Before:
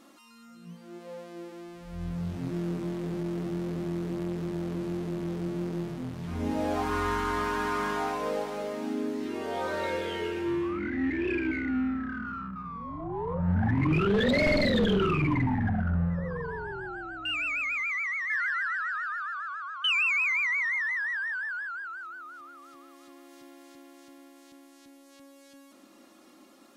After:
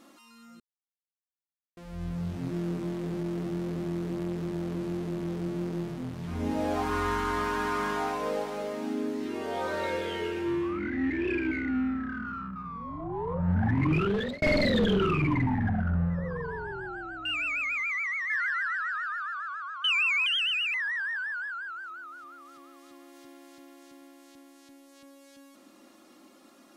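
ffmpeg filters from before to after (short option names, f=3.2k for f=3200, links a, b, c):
-filter_complex "[0:a]asplit=6[a][b][c][d][e][f];[a]atrim=end=0.6,asetpts=PTS-STARTPTS,afade=t=out:st=0.596:d=0.004:c=hsin[g];[b]atrim=start=0.6:end=1.77,asetpts=PTS-STARTPTS,volume=0[h];[c]atrim=start=1.77:end=14.42,asetpts=PTS-STARTPTS,afade=t=in:d=0.004:c=hsin,afade=t=out:st=12.06:d=0.59:c=qsin[i];[d]atrim=start=14.42:end=20.264,asetpts=PTS-STARTPTS,afade=t=in:d=0.004:c=hsin[j];[e]atrim=start=20.26:end=20.91,asetpts=PTS-STARTPTS,asetrate=59535,aresample=44100,atrim=end_sample=21233,asetpts=PTS-STARTPTS[k];[f]atrim=start=20.906[l];[g][h][i][j]concat=n=4:v=0:a=1[m];[m][k]acrossfade=d=0.004:c1=hsin:c2=hsin[n];[n][l]acrossfade=d=0.004:c1=hsin:c2=hsin"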